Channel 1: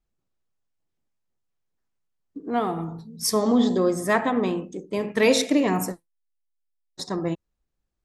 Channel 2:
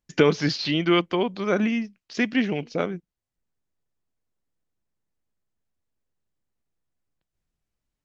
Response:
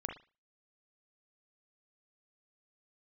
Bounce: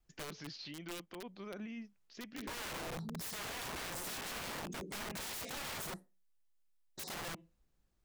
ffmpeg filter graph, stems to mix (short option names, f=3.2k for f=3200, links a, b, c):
-filter_complex "[0:a]adynamicequalizer=threshold=0.0126:dfrequency=180:dqfactor=2.8:tfrequency=180:tqfactor=2.8:attack=5:release=100:ratio=0.375:range=3:mode=boostabove:tftype=bell,acompressor=threshold=-28dB:ratio=6,volume=2.5dB,asplit=2[a][b];[b]volume=-20.5dB[c];[1:a]volume=-18dB,asplit=2[d][e];[e]apad=whole_len=354932[f];[a][f]sidechaincompress=threshold=-40dB:ratio=8:attack=16:release=789[g];[2:a]atrim=start_sample=2205[h];[c][h]afir=irnorm=-1:irlink=0[i];[g][d][i]amix=inputs=3:normalize=0,aeval=exprs='(mod(33.5*val(0)+1,2)-1)/33.5':c=same,alimiter=level_in=14dB:limit=-24dB:level=0:latency=1:release=50,volume=-14dB"